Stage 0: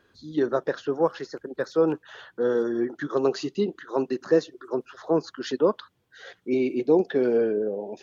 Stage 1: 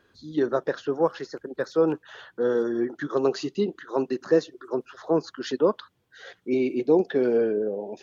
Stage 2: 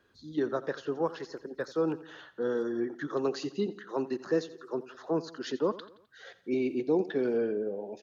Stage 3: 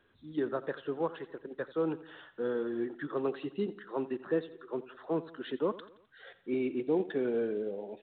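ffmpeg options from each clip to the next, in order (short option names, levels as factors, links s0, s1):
-af anull
-filter_complex "[0:a]acrossover=split=470|700[s0][s1][s2];[s1]acompressor=threshold=0.0141:ratio=6[s3];[s0][s3][s2]amix=inputs=3:normalize=0,aecho=1:1:86|172|258|344:0.141|0.0692|0.0339|0.0166,volume=0.562"
-af "acrusher=bits=7:mode=log:mix=0:aa=0.000001,volume=0.75" -ar 8000 -c:a pcm_mulaw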